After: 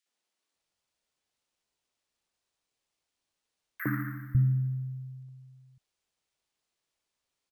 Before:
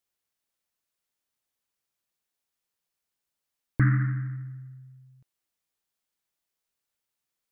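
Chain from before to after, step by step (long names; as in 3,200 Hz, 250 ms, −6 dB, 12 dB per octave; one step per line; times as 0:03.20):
decimation without filtering 3×
three-band delay without the direct sound highs, mids, lows 60/550 ms, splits 180/1,600 Hz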